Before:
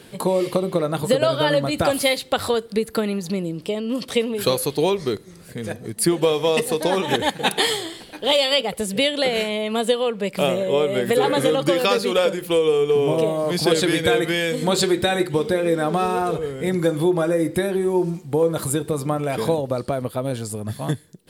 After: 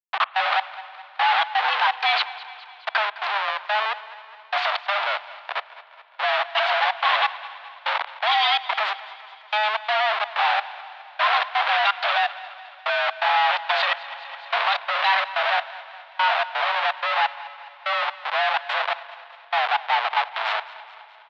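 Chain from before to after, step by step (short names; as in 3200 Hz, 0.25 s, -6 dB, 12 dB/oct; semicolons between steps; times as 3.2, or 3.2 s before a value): bell 1100 Hz +3.5 dB 1.2 oct; 3.7–5.08 sample leveller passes 2; Schmitt trigger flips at -32.5 dBFS; step gate "xx.xx.....xx.x" 126 bpm -60 dB; feedback echo 0.21 s, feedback 59%, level -17.5 dB; spring tank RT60 2.9 s, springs 41/52 ms, chirp 65 ms, DRR 19.5 dB; mistuned SSB +210 Hz 580–3600 Hz; 13.79–14.78 three-band squash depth 40%; gain +4 dB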